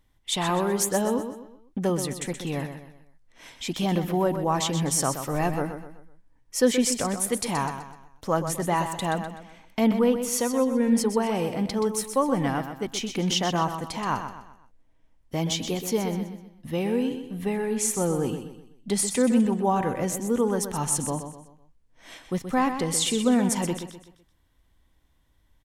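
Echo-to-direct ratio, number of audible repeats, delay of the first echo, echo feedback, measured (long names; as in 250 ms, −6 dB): −8.5 dB, 4, 126 ms, 39%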